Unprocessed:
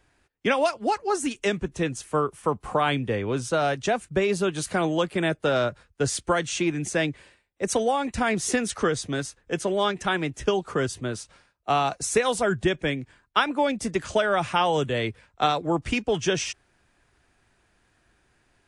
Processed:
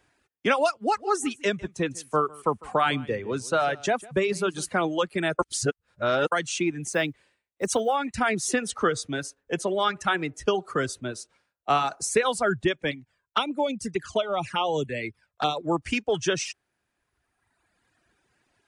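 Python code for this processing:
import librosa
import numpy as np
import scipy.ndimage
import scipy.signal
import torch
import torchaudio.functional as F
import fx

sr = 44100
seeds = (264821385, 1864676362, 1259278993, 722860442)

y = fx.echo_single(x, sr, ms=152, db=-11.5, at=(0.73, 4.69))
y = fx.block_float(y, sr, bits=7, at=(6.9, 7.95), fade=0.02)
y = fx.echo_wet_bandpass(y, sr, ms=62, feedback_pct=34, hz=660.0, wet_db=-15.5, at=(8.55, 12.25))
y = fx.env_flanger(y, sr, rest_ms=2.4, full_db=-20.0, at=(12.91, 15.57))
y = fx.edit(y, sr, fx.reverse_span(start_s=5.39, length_s=0.93), tone=tone)
y = fx.dynamic_eq(y, sr, hz=1300.0, q=5.0, threshold_db=-43.0, ratio=4.0, max_db=5)
y = fx.highpass(y, sr, hz=120.0, slope=6)
y = fx.dereverb_blind(y, sr, rt60_s=1.6)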